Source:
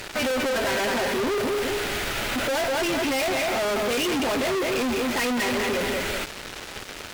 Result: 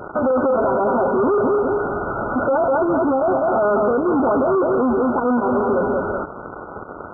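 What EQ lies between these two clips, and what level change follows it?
high-pass filter 120 Hz 6 dB per octave
linear-phase brick-wall low-pass 1,500 Hz
+8.5 dB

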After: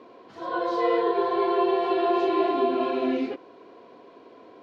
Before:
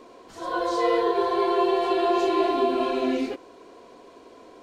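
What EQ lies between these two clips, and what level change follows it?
high-pass filter 99 Hz 24 dB per octave
high-frequency loss of the air 310 metres
high-shelf EQ 5,100 Hz +10.5 dB
0.0 dB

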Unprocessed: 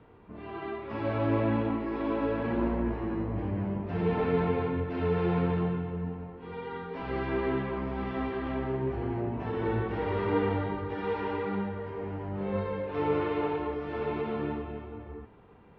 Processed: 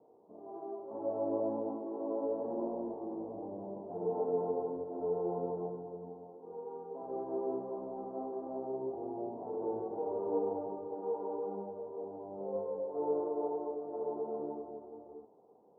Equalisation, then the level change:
high-pass filter 480 Hz 12 dB per octave
Butterworth low-pass 790 Hz 36 dB per octave
0.0 dB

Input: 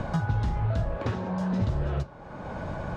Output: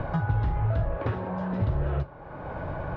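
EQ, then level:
low-pass filter 2,600 Hz 12 dB per octave
high-frequency loss of the air 51 metres
parametric band 210 Hz −14 dB 0.24 octaves
+1.5 dB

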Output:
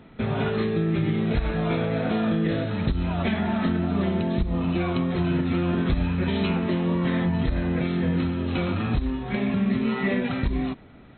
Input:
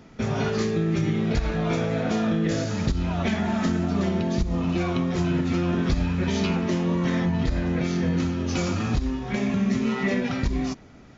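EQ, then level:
linear-phase brick-wall low-pass 4,200 Hz
0.0 dB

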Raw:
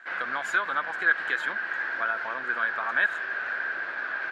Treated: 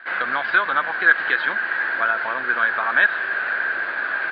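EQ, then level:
Butterworth low-pass 4,800 Hz 96 dB per octave
+7.5 dB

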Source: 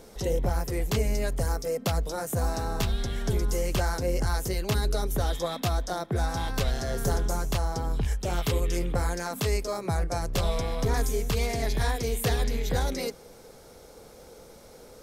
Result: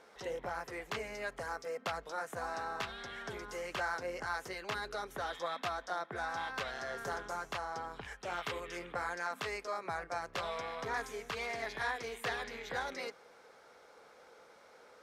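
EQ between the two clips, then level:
resonant band-pass 1,500 Hz, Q 1.2
0.0 dB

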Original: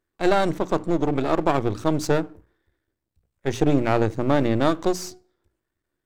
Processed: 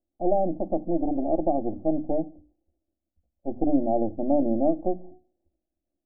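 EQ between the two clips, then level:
Butterworth low-pass 860 Hz 72 dB per octave
mains-hum notches 50/100/150/200/250/300 Hz
phaser with its sweep stopped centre 640 Hz, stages 8
0.0 dB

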